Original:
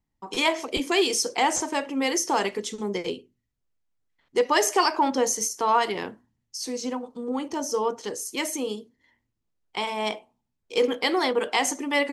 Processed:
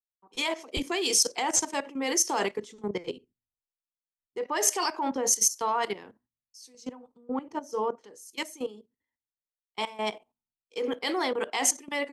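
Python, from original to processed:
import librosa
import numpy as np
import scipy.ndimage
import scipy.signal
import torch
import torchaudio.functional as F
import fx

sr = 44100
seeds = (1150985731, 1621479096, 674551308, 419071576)

y = fx.level_steps(x, sr, step_db=14)
y = fx.low_shelf(y, sr, hz=180.0, db=-3.0)
y = fx.band_widen(y, sr, depth_pct=100)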